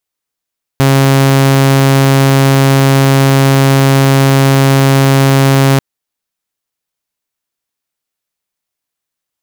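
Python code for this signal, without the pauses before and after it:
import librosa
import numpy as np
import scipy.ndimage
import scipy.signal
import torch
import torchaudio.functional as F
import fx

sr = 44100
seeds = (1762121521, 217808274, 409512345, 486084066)

y = 10.0 ** (-3.0 / 20.0) * (2.0 * np.mod(136.0 * (np.arange(round(4.99 * sr)) / sr), 1.0) - 1.0)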